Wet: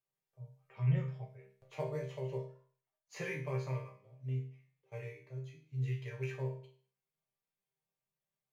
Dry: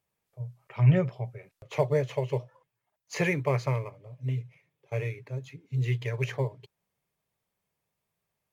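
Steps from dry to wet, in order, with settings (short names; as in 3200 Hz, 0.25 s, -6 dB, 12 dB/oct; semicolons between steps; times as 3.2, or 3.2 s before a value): resonator bank C3 minor, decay 0.45 s; gain +4.5 dB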